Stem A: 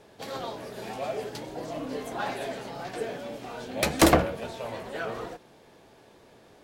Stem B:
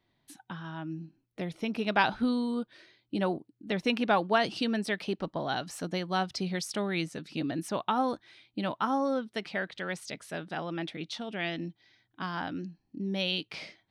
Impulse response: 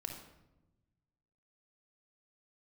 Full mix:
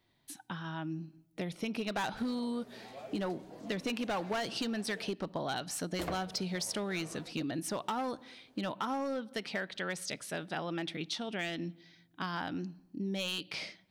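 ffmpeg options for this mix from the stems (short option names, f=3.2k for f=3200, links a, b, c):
-filter_complex "[0:a]adelay=1950,volume=-14.5dB,asplit=3[a][b][c];[a]atrim=end=5.1,asetpts=PTS-STARTPTS,afade=t=out:st=5.096:d=0.004:c=hsin[d];[b]atrim=start=5.1:end=5.99,asetpts=PTS-STARTPTS,volume=0[e];[c]atrim=start=5.99,asetpts=PTS-STARTPTS,afade=t=in:d=0.004:c=hsin[f];[d][e][f]concat=n=3:v=0:a=1[g];[1:a]highshelf=f=4.2k:g=6.5,volume=-0.5dB,asplit=2[h][i];[i]volume=-18.5dB[j];[2:a]atrim=start_sample=2205[k];[j][k]afir=irnorm=-1:irlink=0[l];[g][h][l]amix=inputs=3:normalize=0,volume=24dB,asoftclip=hard,volume=-24dB,acompressor=threshold=-32dB:ratio=6"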